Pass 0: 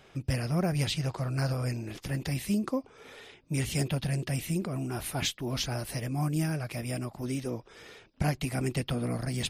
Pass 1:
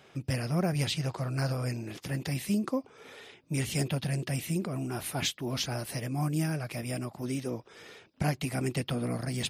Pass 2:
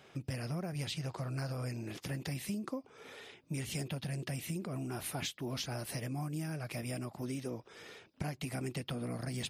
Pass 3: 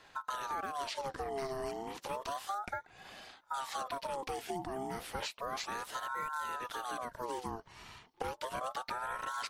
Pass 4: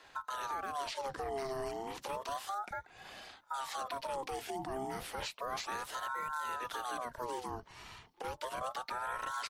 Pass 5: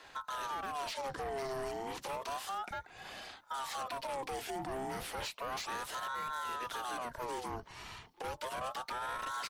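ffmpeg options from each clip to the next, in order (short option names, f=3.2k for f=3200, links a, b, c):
-af "highpass=99"
-af "acompressor=threshold=-33dB:ratio=6,volume=-2dB"
-filter_complex "[0:a]acrossover=split=6200[a][b];[b]acompressor=threshold=-52dB:ratio=4:attack=1:release=60[c];[a][c]amix=inputs=2:normalize=0,aeval=exprs='val(0)*sin(2*PI*870*n/s+870*0.4/0.32*sin(2*PI*0.32*n/s))':c=same,volume=2.5dB"
-filter_complex "[0:a]alimiter=level_in=5.5dB:limit=-24dB:level=0:latency=1:release=54,volume=-5.5dB,acrossover=split=210[a][b];[a]adelay=30[c];[c][b]amix=inputs=2:normalize=0,volume=1dB"
-af "asoftclip=type=tanh:threshold=-37.5dB,volume=3.5dB"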